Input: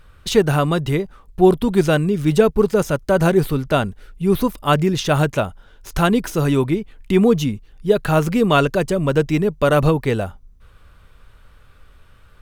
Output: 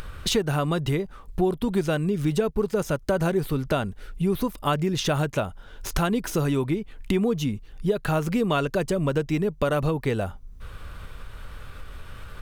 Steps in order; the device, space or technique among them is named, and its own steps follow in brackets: upward and downward compression (upward compressor, threshold -30 dBFS; compression 4:1, threshold -24 dBFS, peak gain reduction 14 dB); trim +2 dB

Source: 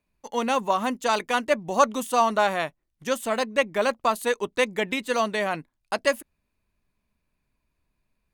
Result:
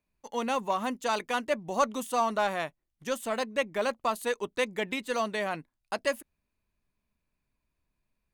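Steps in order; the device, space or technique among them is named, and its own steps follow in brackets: parallel distortion (in parallel at -6.5 dB: hard clipper -19 dBFS, distortion -10 dB); on the sum: trim -8.5 dB

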